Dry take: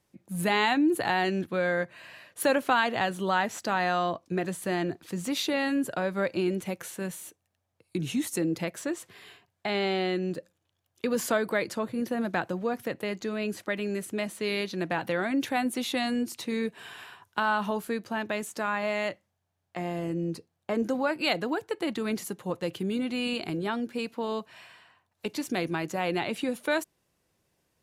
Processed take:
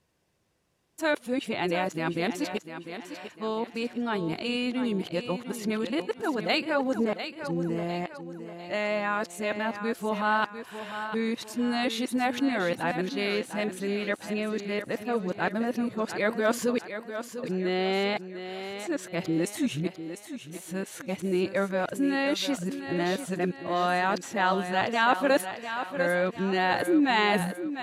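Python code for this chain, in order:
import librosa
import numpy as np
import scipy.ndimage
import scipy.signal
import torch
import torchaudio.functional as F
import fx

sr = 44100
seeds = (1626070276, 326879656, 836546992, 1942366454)

y = x[::-1].copy()
y = fx.high_shelf(y, sr, hz=11000.0, db=-10.5)
y = fx.echo_thinned(y, sr, ms=699, feedback_pct=43, hz=180.0, wet_db=-9.5)
y = y * librosa.db_to_amplitude(1.0)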